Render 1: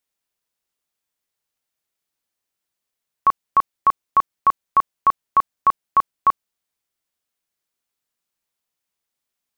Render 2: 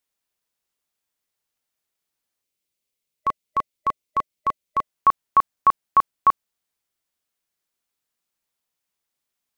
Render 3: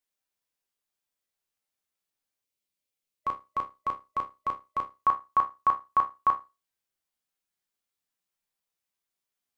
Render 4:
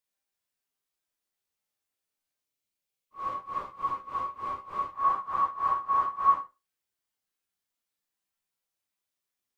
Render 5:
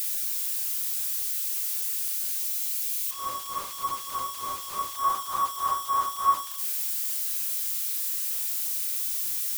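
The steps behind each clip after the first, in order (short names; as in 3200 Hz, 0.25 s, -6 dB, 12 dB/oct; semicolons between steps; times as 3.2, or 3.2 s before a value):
spectral gain 2.42–4.83, 610–2000 Hz -7 dB
resonator bank C2 sus4, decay 0.25 s; gain +4 dB
phase scrambler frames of 0.2 s
switching spikes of -25 dBFS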